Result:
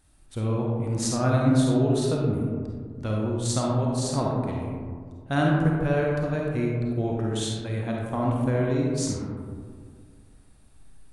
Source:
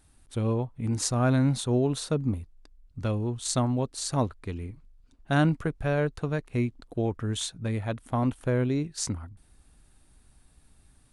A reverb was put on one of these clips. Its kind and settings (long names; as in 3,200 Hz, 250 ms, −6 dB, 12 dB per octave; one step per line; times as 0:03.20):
comb and all-pass reverb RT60 2 s, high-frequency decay 0.3×, pre-delay 10 ms, DRR −2.5 dB
level −2 dB